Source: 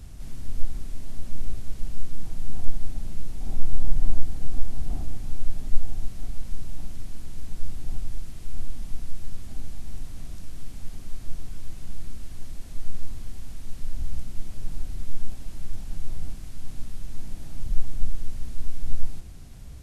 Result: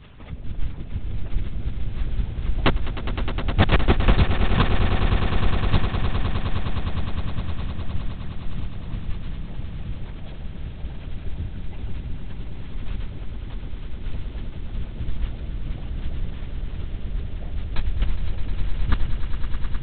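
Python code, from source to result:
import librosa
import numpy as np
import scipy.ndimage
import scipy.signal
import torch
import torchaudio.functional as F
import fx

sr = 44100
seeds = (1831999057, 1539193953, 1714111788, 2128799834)

y = fx.spec_quant(x, sr, step_db=30)
y = fx.low_shelf(y, sr, hz=110.0, db=-9.0)
y = (np.mod(10.0 ** (13.5 / 20.0) * y + 1.0, 2.0) - 1.0) / 10.0 ** (13.5 / 20.0)
y = fx.lpc_vocoder(y, sr, seeds[0], excitation='whisper', order=10)
y = fx.echo_swell(y, sr, ms=103, loudest=8, wet_db=-12.0)
y = F.gain(torch.from_numpy(y), 1.5).numpy()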